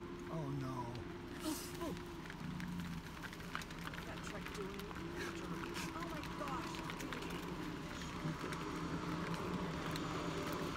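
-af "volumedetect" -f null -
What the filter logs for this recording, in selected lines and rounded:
mean_volume: -44.0 dB
max_volume: -24.6 dB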